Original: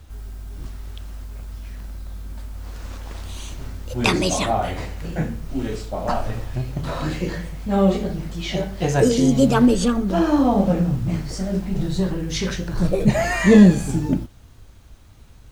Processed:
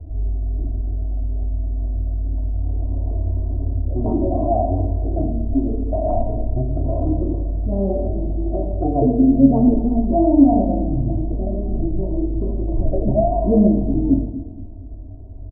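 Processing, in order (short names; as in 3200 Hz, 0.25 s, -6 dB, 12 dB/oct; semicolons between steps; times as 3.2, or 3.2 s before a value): steep low-pass 730 Hz 48 dB/oct; dynamic EQ 420 Hz, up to -7 dB, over -33 dBFS, Q 1.6; comb 3 ms, depth 92%; in parallel at +2.5 dB: compressor, threshold -30 dBFS, peak gain reduction 19 dB; on the sum: feedback echo 0.234 s, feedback 54%, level -19 dB; on a send at -2 dB: reverb RT60 0.90 s, pre-delay 5 ms; on the sum: gain -2 dB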